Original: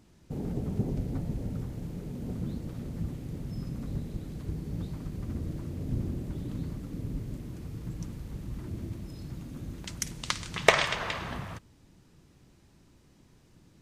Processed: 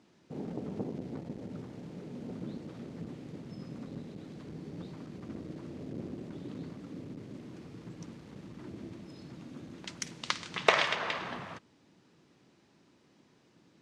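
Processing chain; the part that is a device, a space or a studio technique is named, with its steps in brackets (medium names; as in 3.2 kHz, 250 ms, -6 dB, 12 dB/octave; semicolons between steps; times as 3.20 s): public-address speaker with an overloaded transformer (transformer saturation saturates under 1.4 kHz; band-pass 220–5400 Hz)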